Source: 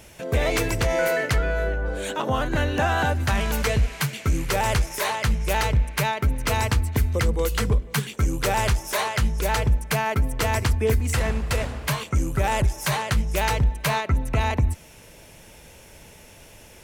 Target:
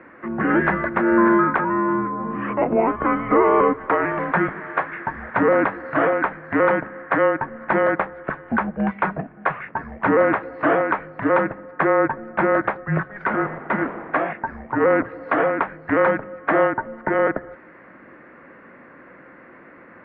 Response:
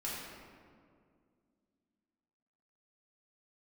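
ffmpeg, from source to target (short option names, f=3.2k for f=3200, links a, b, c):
-af "asetrate=37044,aresample=44100,highpass=f=460:t=q:w=0.5412,highpass=f=460:t=q:w=1.307,lowpass=f=2.1k:t=q:w=0.5176,lowpass=f=2.1k:t=q:w=0.7071,lowpass=f=2.1k:t=q:w=1.932,afreqshift=-210,volume=8.5dB"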